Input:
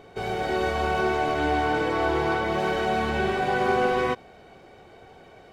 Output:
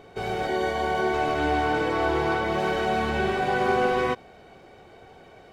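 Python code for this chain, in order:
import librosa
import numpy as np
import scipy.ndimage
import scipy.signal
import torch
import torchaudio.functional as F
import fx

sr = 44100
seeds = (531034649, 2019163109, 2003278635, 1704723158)

y = fx.notch_comb(x, sr, f0_hz=1300.0, at=(0.47, 1.14))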